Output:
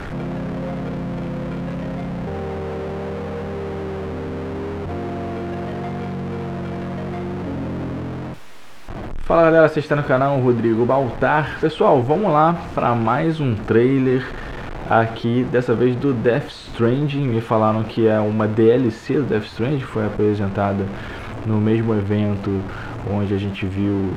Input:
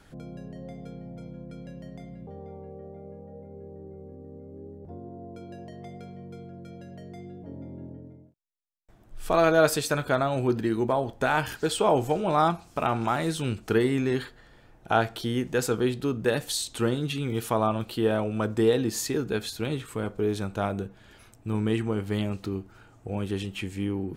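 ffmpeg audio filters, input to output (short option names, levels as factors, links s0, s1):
-filter_complex "[0:a]aeval=exprs='val(0)+0.5*0.0299*sgn(val(0))':c=same,acrossover=split=3200[s0][s1];[s1]acompressor=threshold=0.00501:ratio=4:attack=1:release=60[s2];[s0][s2]amix=inputs=2:normalize=0,aemphasis=mode=reproduction:type=75fm,volume=2.11"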